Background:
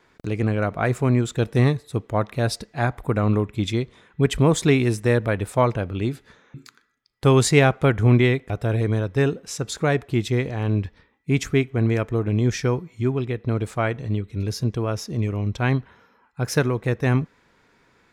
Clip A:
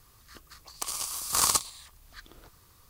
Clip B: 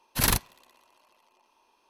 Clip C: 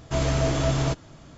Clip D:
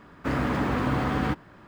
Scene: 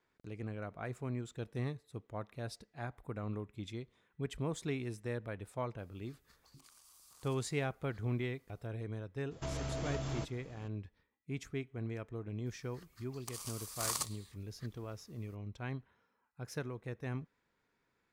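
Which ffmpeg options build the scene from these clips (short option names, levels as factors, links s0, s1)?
-filter_complex "[1:a]asplit=2[s0][s1];[0:a]volume=0.1[s2];[s0]acompressor=threshold=0.01:ratio=6:attack=0.58:release=37:knee=1:detection=rms[s3];[3:a]acompressor=threshold=0.0562:ratio=6:attack=3.2:release=140:knee=1:detection=peak[s4];[s1]equalizer=f=1900:t=o:w=0.33:g=4[s5];[s3]atrim=end=2.89,asetpts=PTS-STARTPTS,volume=0.133,afade=t=in:d=0.004:c=hsin,afade=t=out:st=2.886:d=0.004:c=hsin,adelay=5780[s6];[s4]atrim=end=1.37,asetpts=PTS-STARTPTS,volume=0.335,afade=t=in:d=0.004:c=hsin,afade=t=out:st=1.366:d=0.004:c=hsin,adelay=9310[s7];[s5]atrim=end=2.89,asetpts=PTS-STARTPTS,volume=0.237,afade=t=in:d=0.004:c=hsin,afade=t=out:st=2.886:d=0.004:c=hsin,adelay=12460[s8];[s2][s6][s7][s8]amix=inputs=4:normalize=0"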